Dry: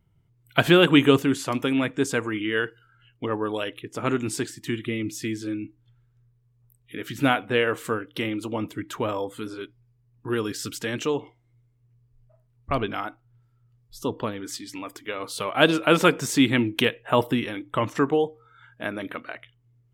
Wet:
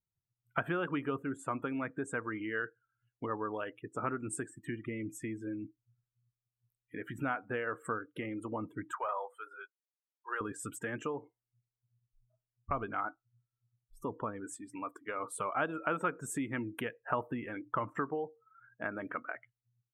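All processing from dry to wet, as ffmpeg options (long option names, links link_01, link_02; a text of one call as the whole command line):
ffmpeg -i in.wav -filter_complex "[0:a]asettb=1/sr,asplit=3[link_01][link_02][link_03];[link_01]atrim=end=8.924[link_04];[link_02]atrim=start=8.92:end=10.41,asetpts=PTS-STARTPTS,afade=type=in:duration=0.004:curve=qsin,afade=type=out:start_time=1.486:duration=0.004:curve=qsin,highpass=frequency=580:width=0.5412,highpass=frequency=580:width=1.3066,volume=24.5dB,asoftclip=hard,volume=-24.5dB[link_05];[link_03]atrim=start=10.406[link_06];[link_04][link_05]acrossfade=duration=0.004:curve1=hsin:curve2=qsin[link_07];[link_07][link_06]acrossfade=duration=0.004:curve1=qsin:curve2=hsin,acompressor=threshold=-29dB:ratio=3,afftdn=noise_reduction=24:noise_floor=-40,firequalizer=gain_entry='entry(360,0);entry(1300,8);entry(4500,-24);entry(8100,5)':delay=0.05:min_phase=1,volume=-7dB" out.wav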